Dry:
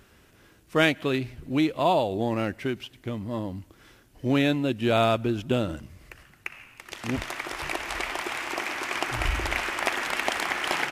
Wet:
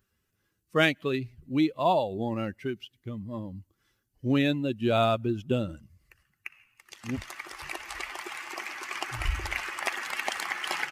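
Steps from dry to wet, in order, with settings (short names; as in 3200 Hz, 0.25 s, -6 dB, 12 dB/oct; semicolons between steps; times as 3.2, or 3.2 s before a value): per-bin expansion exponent 1.5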